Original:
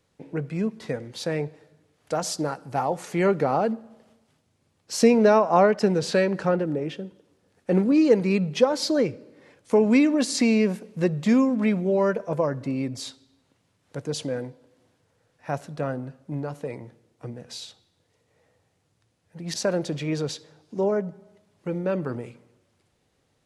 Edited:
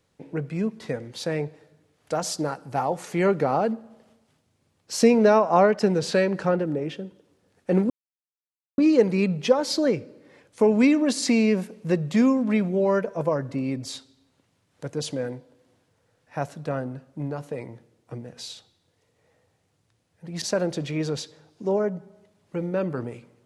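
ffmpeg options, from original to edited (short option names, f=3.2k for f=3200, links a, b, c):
-filter_complex "[0:a]asplit=2[a][b];[a]atrim=end=7.9,asetpts=PTS-STARTPTS,afade=t=out:st=7.896:d=0.004:c=hsin,apad=pad_dur=0.88[c];[b]atrim=start=7.9,asetpts=PTS-STARTPTS,afade=t=in:d=0.004:c=hsin[d];[c][d]concat=n=2:v=0:a=1"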